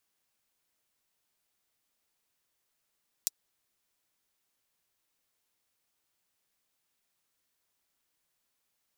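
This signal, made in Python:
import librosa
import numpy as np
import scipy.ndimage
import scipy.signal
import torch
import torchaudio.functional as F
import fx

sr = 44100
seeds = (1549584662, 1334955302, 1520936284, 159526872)

y = fx.drum_hat(sr, length_s=0.24, from_hz=5300.0, decay_s=0.03)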